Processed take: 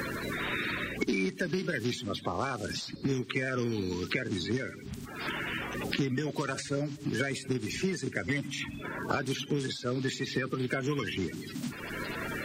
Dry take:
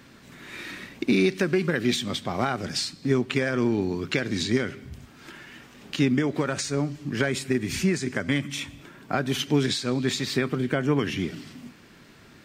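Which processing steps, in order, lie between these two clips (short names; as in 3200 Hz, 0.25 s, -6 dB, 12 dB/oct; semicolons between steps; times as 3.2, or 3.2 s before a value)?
bin magnitudes rounded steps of 30 dB; three-band squash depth 100%; gain -6.5 dB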